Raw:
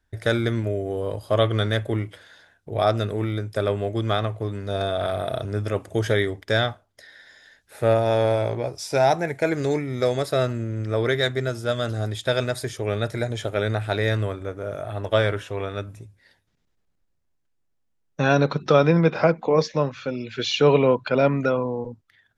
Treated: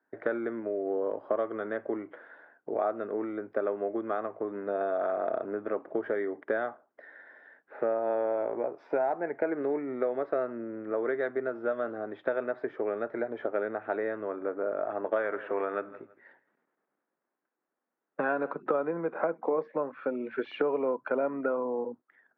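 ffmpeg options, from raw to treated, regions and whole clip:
-filter_complex "[0:a]asettb=1/sr,asplit=3[a][b][c];[a]atrim=end=15.164[d];[b]atrim=start=15.16:end=18.52,asetpts=PTS-STARTPTS,afade=t=in:d=0.004:c=qsin,afade=t=out:st=3.356:d=0.004:c=qsin,equalizer=f=2.4k:w=0.41:g=6,asplit=2[e][f];[f]adelay=164,lowpass=f=4.3k:p=1,volume=-20.5dB,asplit=2[g][h];[h]adelay=164,lowpass=f=4.3k:p=1,volume=0.25[i];[e][g][i]amix=inputs=3:normalize=0,atrim=end_sample=148176[j];[c]atrim=start=18.516[k];[d][j]acrossfade=d=0.004:c1=hsin:c2=qsin[l];[l][k]acrossfade=d=0.004:c1=qsin:c2=hsin,lowpass=f=1.6k:w=0.5412,lowpass=f=1.6k:w=1.3066,acompressor=threshold=-28dB:ratio=6,highpass=f=260:w=0.5412,highpass=f=260:w=1.3066,volume=2.5dB"

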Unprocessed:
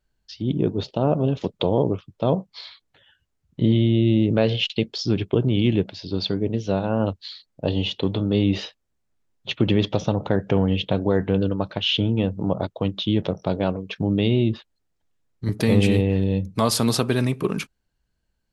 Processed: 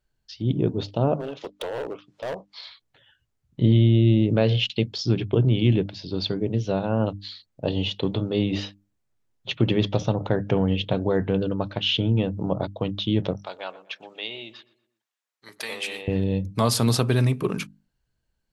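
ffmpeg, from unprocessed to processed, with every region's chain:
-filter_complex "[0:a]asettb=1/sr,asplit=3[a][b][c];[a]atrim=end=1.144[d];[b]atrim=start=1.14:end=2.63,asetpts=PTS-STARTPTS,afade=t=in:d=0.004:c=qsin,afade=t=out:st=1.486:d=0.004:c=qsin,highpass=470,lowpass=6.4k,acompressor=mode=upward:threshold=-41dB:ratio=2.5:attack=3.2:release=140:knee=2.83:detection=peak,asoftclip=type=hard:threshold=-24.5dB[e];[c]atrim=start=2.626[f];[d][e]acrossfade=d=0.004:c1=hsin:c2=qsin[g];[g][f]acrossfade=d=0.004:c1=qsin:c2=hsin,asettb=1/sr,asplit=3[h][i][j];[h]atrim=end=13.364[k];[i]atrim=start=13.36:end=16.08,asetpts=PTS-STARTPTS,afade=t=in:d=0.004:c=qsin,afade=t=out:st=2.716:d=0.004:c=qsin,highpass=1k,asplit=2[l][m];[m]adelay=121,lowpass=f=2.4k:p=1,volume=-17.5dB,asplit=2[n][o];[o]adelay=121,lowpass=f=2.4k:p=1,volume=0.45,asplit=2[p][q];[q]adelay=121,lowpass=f=2.4k:p=1,volume=0.45,asplit=2[r][s];[s]adelay=121,lowpass=f=2.4k:p=1,volume=0.45[t];[l][n][p][r][t]amix=inputs=5:normalize=0,atrim=end_sample=119952[u];[j]atrim=start=16.076[v];[k][u]acrossfade=d=0.004:c1=hsin:c2=qsin[w];[w][v]acrossfade=d=0.004:c1=qsin:c2=hsin,equalizer=f=120:t=o:w=0.23:g=7,bandreject=f=50:t=h:w=6,bandreject=f=100:t=h:w=6,bandreject=f=150:t=h:w=6,bandreject=f=200:t=h:w=6,bandreject=f=250:t=h:w=6,bandreject=f=300:t=h:w=6,volume=-1.5dB"

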